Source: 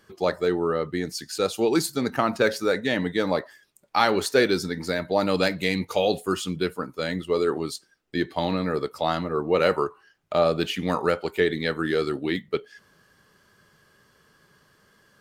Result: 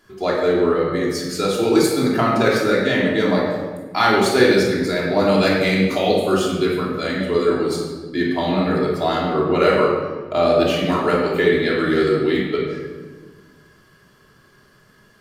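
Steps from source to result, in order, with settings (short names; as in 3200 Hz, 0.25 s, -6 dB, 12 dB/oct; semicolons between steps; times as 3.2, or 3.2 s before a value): shoebox room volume 1200 m³, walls mixed, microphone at 3.1 m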